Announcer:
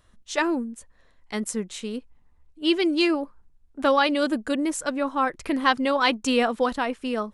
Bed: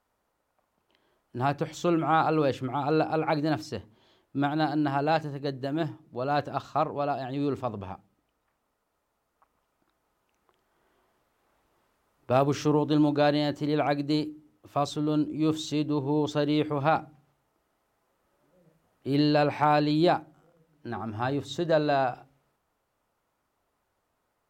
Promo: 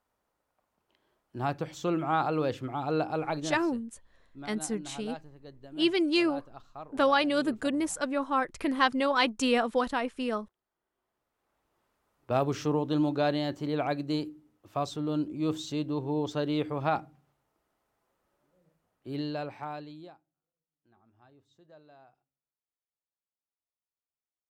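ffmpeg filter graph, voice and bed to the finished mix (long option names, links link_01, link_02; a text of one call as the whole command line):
ffmpeg -i stem1.wav -i stem2.wav -filter_complex "[0:a]adelay=3150,volume=-4dB[link_01];[1:a]volume=9.5dB,afade=type=out:start_time=3.19:duration=0.58:silence=0.211349,afade=type=in:start_time=10.92:duration=1.17:silence=0.211349,afade=type=out:start_time=18.1:duration=2.04:silence=0.0421697[link_02];[link_01][link_02]amix=inputs=2:normalize=0" out.wav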